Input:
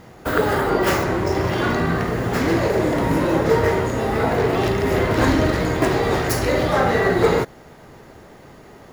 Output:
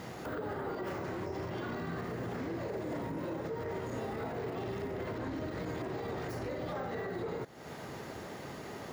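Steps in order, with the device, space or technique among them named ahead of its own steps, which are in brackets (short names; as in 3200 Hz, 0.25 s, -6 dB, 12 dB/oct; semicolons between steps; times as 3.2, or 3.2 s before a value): broadcast voice chain (HPF 88 Hz 12 dB/oct; de-esser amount 95%; compressor 5:1, threshold -34 dBFS, peak gain reduction 18 dB; bell 4500 Hz +3 dB 1.9 oct; limiter -30 dBFS, peak gain reduction 8 dB)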